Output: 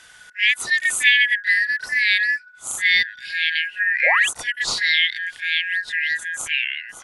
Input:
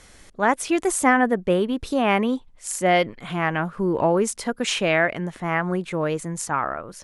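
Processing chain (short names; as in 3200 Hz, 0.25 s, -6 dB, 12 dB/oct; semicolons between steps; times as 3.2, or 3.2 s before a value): four-band scrambler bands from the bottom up 4123; painted sound rise, 4.06–4.29, 480–3600 Hz -23 dBFS; reverse echo 32 ms -11 dB; gain +1 dB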